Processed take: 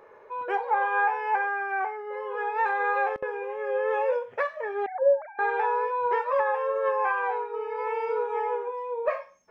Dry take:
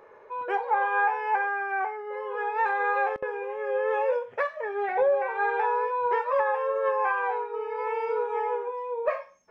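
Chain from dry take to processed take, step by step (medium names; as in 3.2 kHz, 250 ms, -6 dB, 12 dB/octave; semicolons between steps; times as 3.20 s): 4.86–5.39 s: formants replaced by sine waves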